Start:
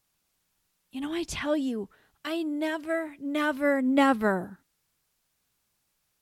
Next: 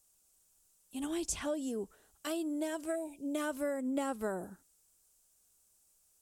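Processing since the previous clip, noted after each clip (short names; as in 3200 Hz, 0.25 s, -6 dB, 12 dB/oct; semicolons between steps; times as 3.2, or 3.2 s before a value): spectral gain 2.95–3.35, 970–2200 Hz -22 dB; graphic EQ 125/250/1000/2000/4000/8000 Hz -11/-5/-5/-10/-7/+10 dB; compressor 5:1, threshold -35 dBFS, peak gain reduction 12 dB; gain +2.5 dB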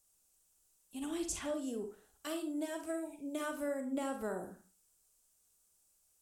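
reverb RT60 0.35 s, pre-delay 37 ms, DRR 5 dB; gain -3.5 dB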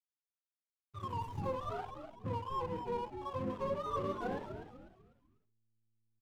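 spectrum mirrored in octaves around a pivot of 560 Hz; backlash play -43.5 dBFS; frequency-shifting echo 0.248 s, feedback 37%, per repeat -110 Hz, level -8 dB; gain +3 dB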